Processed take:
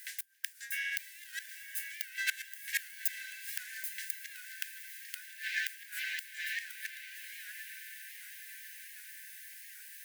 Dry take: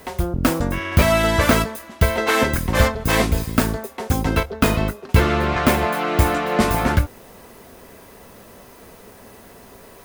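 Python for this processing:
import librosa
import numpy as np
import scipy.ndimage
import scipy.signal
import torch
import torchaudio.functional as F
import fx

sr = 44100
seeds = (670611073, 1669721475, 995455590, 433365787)

y = fx.peak_eq(x, sr, hz=3000.0, db=-8.0, octaves=2.3)
y = fx.gate_flip(y, sr, shuts_db=-10.0, range_db=-25)
y = fx.brickwall_highpass(y, sr, low_hz=1500.0)
y = fx.echo_diffused(y, sr, ms=1006, feedback_pct=59, wet_db=-9.0)
y = fx.record_warp(y, sr, rpm=78.0, depth_cents=100.0)
y = F.gain(torch.from_numpy(y), 1.0).numpy()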